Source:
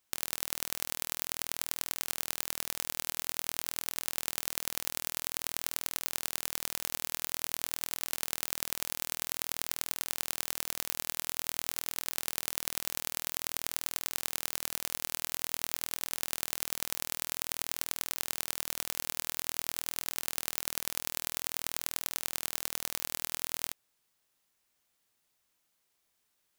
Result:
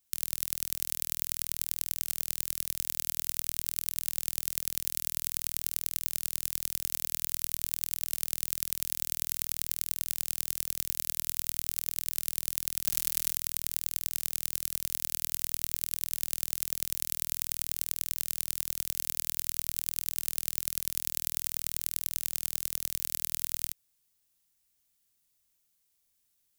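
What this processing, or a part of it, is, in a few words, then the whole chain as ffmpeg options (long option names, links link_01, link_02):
smiley-face EQ: -filter_complex "[0:a]asettb=1/sr,asplit=3[link_01][link_02][link_03];[link_01]atrim=end=12.844[link_04];[link_02]atrim=start=12.84:end=13.35,asetpts=PTS-STARTPTS,afade=type=in:duration=0.004:curve=qsin,afade=type=out:start_time=0.506:duration=0.004:curve=qsin,aecho=1:1:5.6:0.79,atrim=end_sample=22491[link_05];[link_03]atrim=start=13.346[link_06];[link_04][link_05]acrossfade=duration=0.004:curve1=hsin:curve2=qsin[link_07];[link_07][link_06]acrossfade=duration=0.004:curve1=qsin:curve2=hsin,lowshelf=frequency=120:gain=8,equalizer=frequency=880:width_type=o:width=2.9:gain=-7.5,highshelf=frequency=6100:gain=7.5,volume=-2.5dB"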